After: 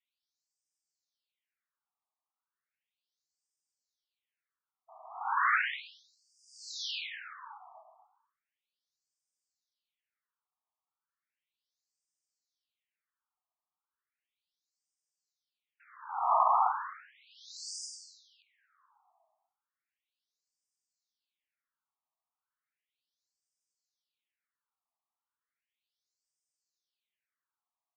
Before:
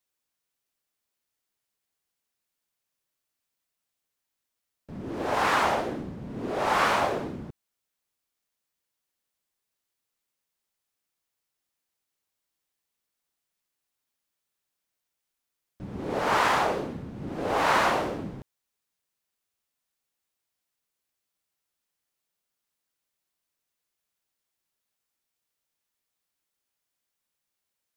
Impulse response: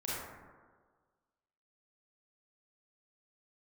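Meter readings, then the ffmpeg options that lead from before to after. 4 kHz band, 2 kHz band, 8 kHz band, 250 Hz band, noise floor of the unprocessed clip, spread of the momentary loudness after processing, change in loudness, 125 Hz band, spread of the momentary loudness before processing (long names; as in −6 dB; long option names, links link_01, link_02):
−6.5 dB, −6.5 dB, −5.0 dB, below −40 dB, −84 dBFS, 23 LU, −5.0 dB, below −40 dB, 18 LU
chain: -filter_complex "[0:a]asplit=2[link_01][link_02];[link_02]adelay=244,lowpass=frequency=800:poles=1,volume=-9dB,asplit=2[link_03][link_04];[link_04]adelay=244,lowpass=frequency=800:poles=1,volume=0.52,asplit=2[link_05][link_06];[link_06]adelay=244,lowpass=frequency=800:poles=1,volume=0.52,asplit=2[link_07][link_08];[link_08]adelay=244,lowpass=frequency=800:poles=1,volume=0.52,asplit=2[link_09][link_10];[link_10]adelay=244,lowpass=frequency=800:poles=1,volume=0.52,asplit=2[link_11][link_12];[link_12]adelay=244,lowpass=frequency=800:poles=1,volume=0.52[link_13];[link_01][link_03][link_05][link_07][link_09][link_11][link_13]amix=inputs=7:normalize=0,afreqshift=61,afftfilt=real='re*between(b*sr/1024,890*pow(6700/890,0.5+0.5*sin(2*PI*0.35*pts/sr))/1.41,890*pow(6700/890,0.5+0.5*sin(2*PI*0.35*pts/sr))*1.41)':imag='im*between(b*sr/1024,890*pow(6700/890,0.5+0.5*sin(2*PI*0.35*pts/sr))/1.41,890*pow(6700/890,0.5+0.5*sin(2*PI*0.35*pts/sr))*1.41)':win_size=1024:overlap=0.75"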